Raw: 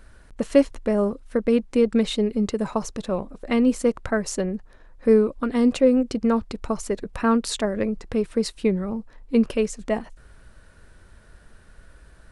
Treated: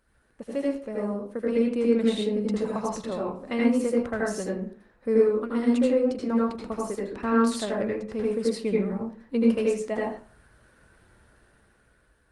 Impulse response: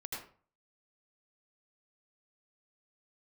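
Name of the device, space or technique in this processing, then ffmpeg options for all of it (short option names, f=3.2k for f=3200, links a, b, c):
far-field microphone of a smart speaker: -filter_complex "[0:a]asplit=3[a][b][c];[a]afade=t=out:st=7.05:d=0.02[d];[b]lowpass=6.1k,afade=t=in:st=7.05:d=0.02,afade=t=out:st=7.45:d=0.02[e];[c]afade=t=in:st=7.45:d=0.02[f];[d][e][f]amix=inputs=3:normalize=0[g];[1:a]atrim=start_sample=2205[h];[g][h]afir=irnorm=-1:irlink=0,highpass=f=120:p=1,dynaudnorm=f=390:g=7:m=11dB,volume=-8.5dB" -ar 48000 -c:a libopus -b:a 32k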